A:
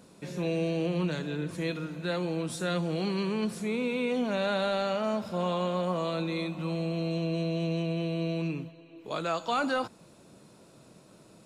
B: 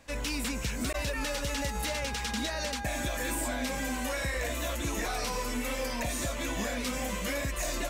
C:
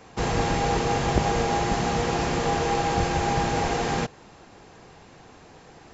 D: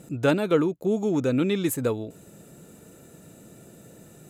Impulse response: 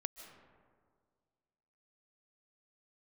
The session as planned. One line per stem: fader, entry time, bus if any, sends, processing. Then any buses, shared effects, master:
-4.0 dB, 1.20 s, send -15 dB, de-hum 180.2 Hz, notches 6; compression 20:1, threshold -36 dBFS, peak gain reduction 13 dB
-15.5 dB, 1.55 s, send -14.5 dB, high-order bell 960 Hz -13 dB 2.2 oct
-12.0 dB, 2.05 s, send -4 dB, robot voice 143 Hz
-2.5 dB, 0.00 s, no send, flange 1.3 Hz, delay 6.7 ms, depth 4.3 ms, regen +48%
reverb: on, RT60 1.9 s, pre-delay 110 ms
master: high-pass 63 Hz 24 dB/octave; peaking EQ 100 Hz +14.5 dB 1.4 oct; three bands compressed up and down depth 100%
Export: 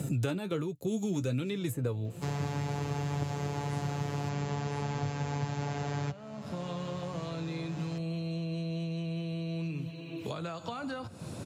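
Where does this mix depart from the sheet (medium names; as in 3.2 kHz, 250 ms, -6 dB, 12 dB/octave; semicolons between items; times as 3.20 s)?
stem A -4.0 dB -> -15.5 dB; stem B: muted; stem C: send off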